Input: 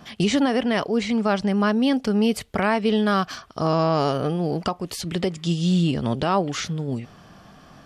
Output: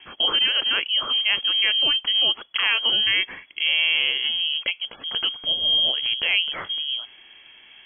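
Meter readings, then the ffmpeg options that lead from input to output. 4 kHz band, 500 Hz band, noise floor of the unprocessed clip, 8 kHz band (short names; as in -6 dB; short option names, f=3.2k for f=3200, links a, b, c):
+16.0 dB, -16.5 dB, -49 dBFS, under -40 dB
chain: -af "aemphasis=mode=production:type=50fm,lowpass=f=2.9k:t=q:w=0.5098,lowpass=f=2.9k:t=q:w=0.6013,lowpass=f=2.9k:t=q:w=0.9,lowpass=f=2.9k:t=q:w=2.563,afreqshift=-3400" -ar 12000 -c:a libmp3lame -b:a 40k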